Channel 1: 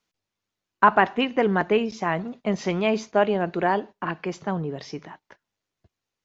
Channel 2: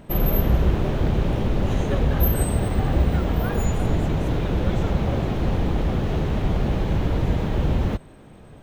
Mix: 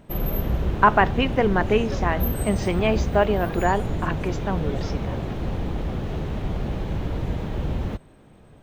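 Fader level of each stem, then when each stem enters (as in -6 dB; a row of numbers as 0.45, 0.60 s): +0.5, -5.0 dB; 0.00, 0.00 s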